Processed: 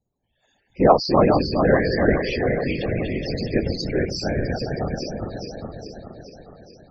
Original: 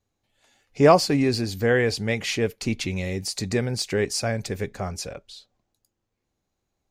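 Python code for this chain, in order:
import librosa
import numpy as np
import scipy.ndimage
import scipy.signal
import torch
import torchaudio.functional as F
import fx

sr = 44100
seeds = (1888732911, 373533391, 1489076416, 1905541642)

y = fx.reverse_delay_fb(x, sr, ms=210, feedback_pct=77, wet_db=-3.0)
y = fx.spec_topn(y, sr, count=32)
y = fx.whisperise(y, sr, seeds[0])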